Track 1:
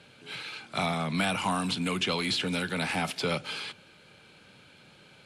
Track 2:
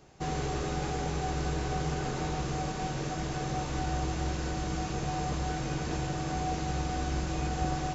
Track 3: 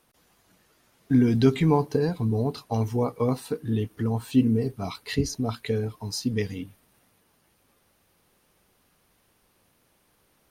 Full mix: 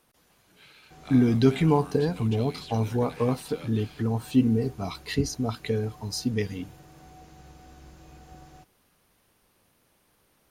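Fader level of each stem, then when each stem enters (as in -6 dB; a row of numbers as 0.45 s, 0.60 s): -15.0 dB, -18.0 dB, -0.5 dB; 0.30 s, 0.70 s, 0.00 s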